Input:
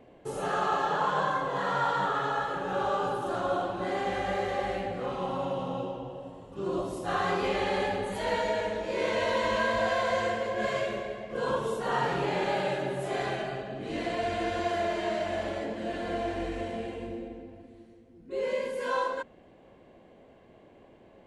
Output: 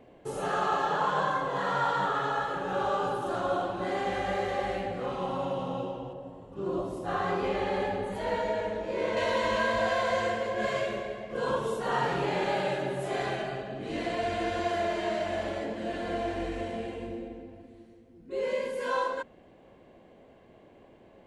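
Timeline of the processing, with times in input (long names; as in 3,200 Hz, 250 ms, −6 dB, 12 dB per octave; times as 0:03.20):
0:06.13–0:09.17: high-shelf EQ 2,000 Hz −8 dB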